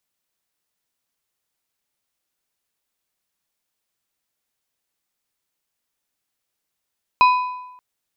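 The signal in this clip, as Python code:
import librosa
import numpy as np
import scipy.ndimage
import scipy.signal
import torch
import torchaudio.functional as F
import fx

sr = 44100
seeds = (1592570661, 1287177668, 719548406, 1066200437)

y = fx.strike_metal(sr, length_s=0.58, level_db=-8, body='plate', hz=999.0, decay_s=0.95, tilt_db=9.0, modes=4)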